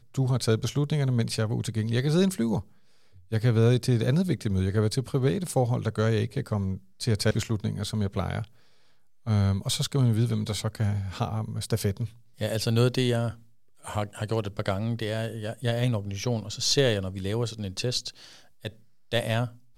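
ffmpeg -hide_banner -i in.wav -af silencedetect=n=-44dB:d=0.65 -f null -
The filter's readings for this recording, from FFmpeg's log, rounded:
silence_start: 8.47
silence_end: 9.26 | silence_duration: 0.79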